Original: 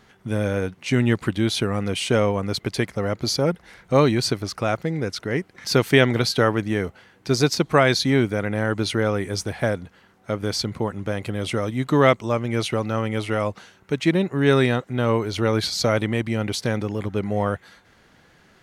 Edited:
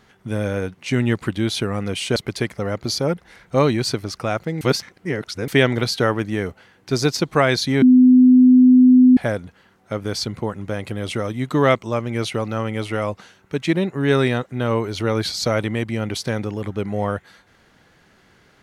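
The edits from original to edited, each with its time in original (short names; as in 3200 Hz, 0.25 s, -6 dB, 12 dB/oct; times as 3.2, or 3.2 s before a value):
2.16–2.54 cut
4.99–5.86 reverse
8.2–9.55 bleep 253 Hz -7 dBFS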